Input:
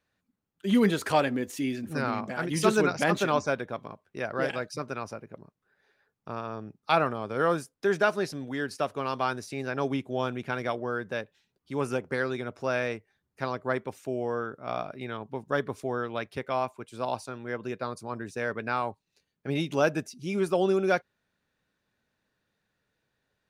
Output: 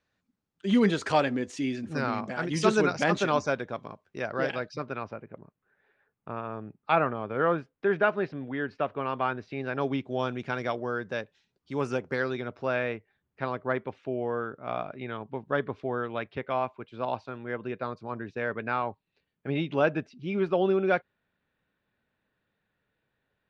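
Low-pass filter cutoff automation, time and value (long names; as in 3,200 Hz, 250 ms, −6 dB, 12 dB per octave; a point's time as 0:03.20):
low-pass filter 24 dB per octave
0:04.21 7,200 Hz
0:05.28 2,900 Hz
0:09.32 2,900 Hz
0:10.40 6,700 Hz
0:12.11 6,700 Hz
0:12.85 3,500 Hz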